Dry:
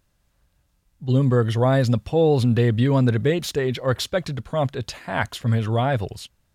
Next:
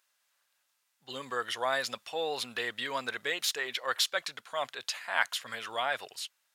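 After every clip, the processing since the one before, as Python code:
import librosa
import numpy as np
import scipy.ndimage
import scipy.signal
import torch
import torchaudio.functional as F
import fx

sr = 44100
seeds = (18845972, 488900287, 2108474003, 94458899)

y = scipy.signal.sosfilt(scipy.signal.butter(2, 1200.0, 'highpass', fs=sr, output='sos'), x)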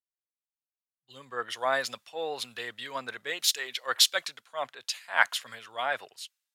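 y = fx.band_widen(x, sr, depth_pct=100)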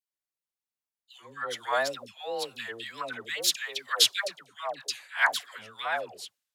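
y = fx.dispersion(x, sr, late='lows', ms=143.0, hz=800.0)
y = fx.wow_flutter(y, sr, seeds[0], rate_hz=2.1, depth_cents=100.0)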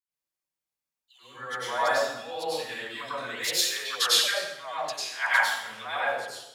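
y = fx.rev_plate(x, sr, seeds[1], rt60_s=0.83, hf_ratio=0.85, predelay_ms=85, drr_db=-9.0)
y = y * librosa.db_to_amplitude(-6.5)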